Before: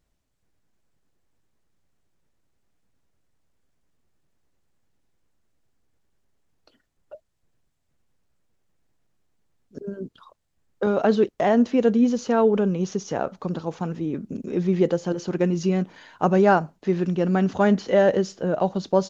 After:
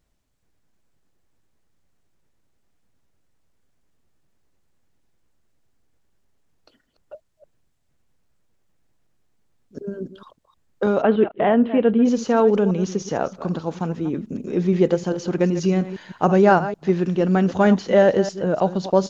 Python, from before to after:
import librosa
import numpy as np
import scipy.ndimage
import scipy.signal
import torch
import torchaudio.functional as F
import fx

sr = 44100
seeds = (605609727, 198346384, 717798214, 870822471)

y = fx.reverse_delay(x, sr, ms=155, wet_db=-12.5)
y = fx.ellip_lowpass(y, sr, hz=3200.0, order=4, stop_db=60, at=(11.01, 12.04), fade=0.02)
y = y * 10.0 ** (2.5 / 20.0)